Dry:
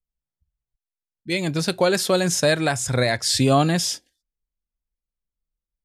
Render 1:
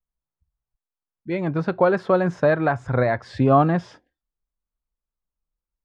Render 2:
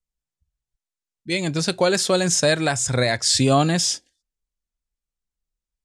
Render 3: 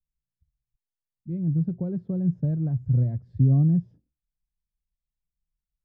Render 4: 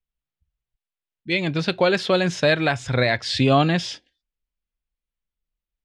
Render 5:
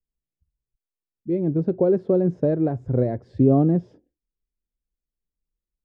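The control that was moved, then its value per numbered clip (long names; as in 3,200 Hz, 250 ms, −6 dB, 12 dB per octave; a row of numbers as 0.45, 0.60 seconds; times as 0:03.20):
low-pass with resonance, frequency: 1,200, 7,900, 150, 3,100, 390 Hertz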